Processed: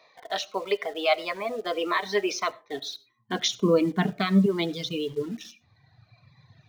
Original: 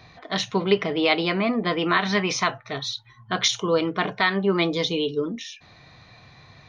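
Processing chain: 3.49–4.46 s: bass shelf 390 Hz +7 dB; reverb removal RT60 1.9 s; high-pass sweep 600 Hz -> 110 Hz, 1.30–5.29 s; in parallel at -7 dB: word length cut 6-bit, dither none; on the sum: treble shelf 7 kHz -5 dB; on a send at -21 dB: reverberation RT60 0.35 s, pre-delay 35 ms; on the sum: Shepard-style phaser falling 1.6 Hz; trim -6 dB

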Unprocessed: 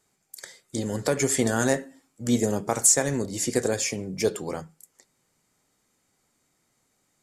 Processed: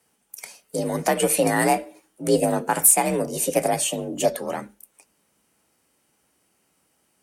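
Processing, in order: formant shift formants +4 st; frequency shift +46 Hz; trim +3.5 dB

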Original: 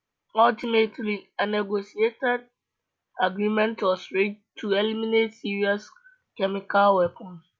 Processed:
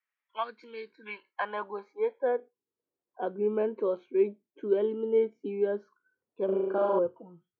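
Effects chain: 0.43–1.06 s: time-frequency box 500–3600 Hz -17 dB; 6.45–6.99 s: flutter echo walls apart 6.3 m, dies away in 1.2 s; band-pass sweep 1.9 kHz -> 380 Hz, 0.88–2.60 s

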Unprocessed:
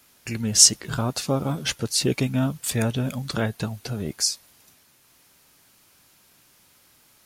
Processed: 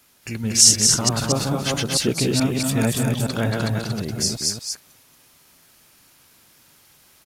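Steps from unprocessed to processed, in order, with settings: chunks repeated in reverse 218 ms, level -1.5 dB; delay 232 ms -4.5 dB

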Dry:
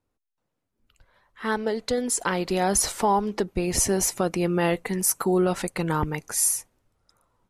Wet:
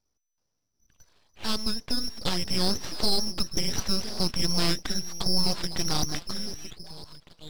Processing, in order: repeats whose band climbs or falls 503 ms, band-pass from 180 Hz, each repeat 1.4 oct, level -6 dB; frequency inversion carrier 3 kHz; full-wave rectifier

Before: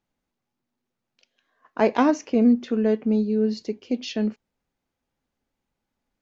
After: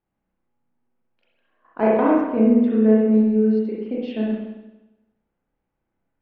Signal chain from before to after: hum notches 50/100/150/200/250/300 Hz; 1.91–2.31 s: level held to a coarse grid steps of 19 dB; distance through air 480 m; spring tank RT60 1 s, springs 32/58 ms, chirp 75 ms, DRR -5 dB; trim -1.5 dB

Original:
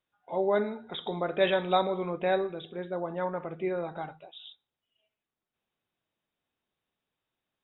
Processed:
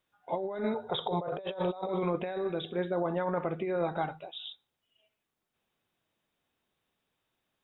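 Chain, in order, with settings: 0.74–1.89 s: graphic EQ 125/250/500/1000/2000 Hz +8/-12/+8/+6/-10 dB; compressor with a negative ratio -33 dBFS, ratio -1

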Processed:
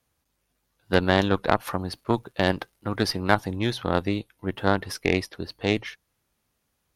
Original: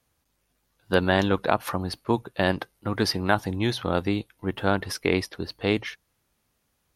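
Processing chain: 1.43–3.14 s: crackle 150 per s -51 dBFS; Chebyshev shaper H 2 -8 dB, 7 -36 dB, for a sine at -5 dBFS; trim -1 dB

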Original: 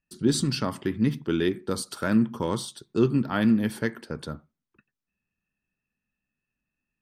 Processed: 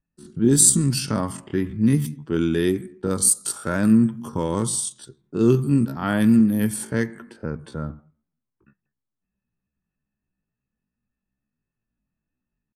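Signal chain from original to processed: resonant high shelf 6.2 kHz +13.5 dB, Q 1.5; level-controlled noise filter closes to 1.4 kHz, open at -18.5 dBFS; tempo 0.55×; tone controls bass +4 dB, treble +2 dB; trim +2 dB

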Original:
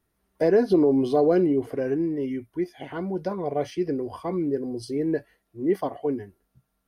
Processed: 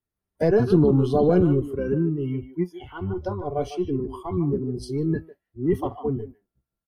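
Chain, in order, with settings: octave divider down 1 oct, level +1 dB; speakerphone echo 150 ms, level -8 dB; spectral noise reduction 16 dB

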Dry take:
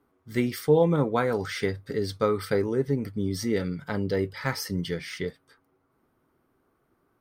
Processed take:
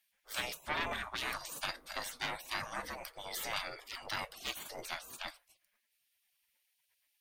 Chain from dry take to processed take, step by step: hum notches 50/100/150/200/250/300/350/400 Hz; saturation -21 dBFS, distortion -11 dB; spectral gate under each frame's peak -25 dB weak; trim +8 dB

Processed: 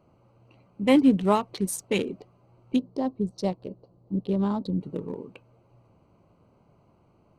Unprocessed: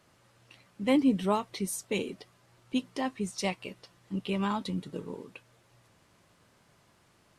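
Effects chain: local Wiener filter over 25 samples; 2.76–4.81 s: FFT filter 550 Hz 0 dB, 2.5 kHz -20 dB, 4.3 kHz -6 dB, 6.4 kHz -14 dB; trim +6 dB

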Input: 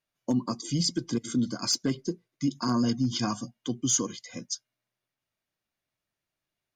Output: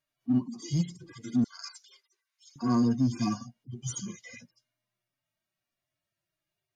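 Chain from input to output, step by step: harmonic-percussive separation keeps harmonic; 1.44–2.56 s: inverse Chebyshev high-pass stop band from 170 Hz, stop band 80 dB; in parallel at -9 dB: hard clipper -29.5 dBFS, distortion -7 dB

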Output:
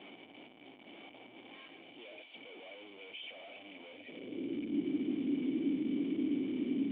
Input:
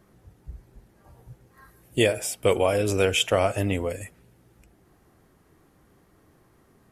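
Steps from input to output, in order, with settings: one-bit comparator; cascade formant filter i; high-pass sweep 740 Hz -> 280 Hz, 3.91–4.61 s; trim -1 dB

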